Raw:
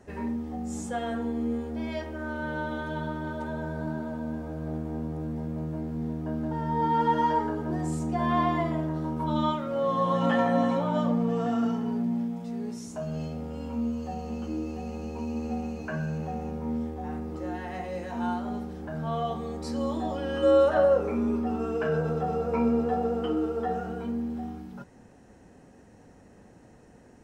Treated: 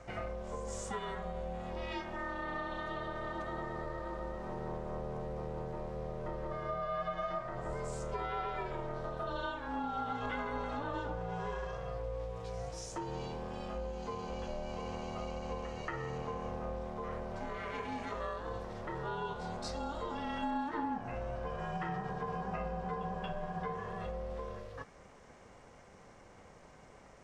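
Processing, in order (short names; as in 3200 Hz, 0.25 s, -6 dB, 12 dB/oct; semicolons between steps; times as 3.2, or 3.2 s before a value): LPF 6800 Hz 12 dB/oct; low shelf 470 Hz -10.5 dB; compressor 4:1, threshold -40 dBFS, peak gain reduction 15.5 dB; reverse echo 0.231 s -15.5 dB; ring modulator 290 Hz; gain +6 dB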